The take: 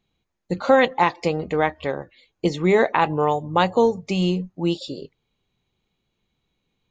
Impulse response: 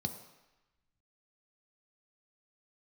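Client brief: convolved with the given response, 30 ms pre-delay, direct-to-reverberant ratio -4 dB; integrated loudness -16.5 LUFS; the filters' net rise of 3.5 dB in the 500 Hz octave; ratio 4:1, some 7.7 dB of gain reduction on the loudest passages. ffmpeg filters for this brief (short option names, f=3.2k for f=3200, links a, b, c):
-filter_complex "[0:a]equalizer=f=500:t=o:g=4,acompressor=threshold=-17dB:ratio=4,asplit=2[a][b];[1:a]atrim=start_sample=2205,adelay=30[c];[b][c]afir=irnorm=-1:irlink=0,volume=3dB[d];[a][d]amix=inputs=2:normalize=0,volume=-3dB"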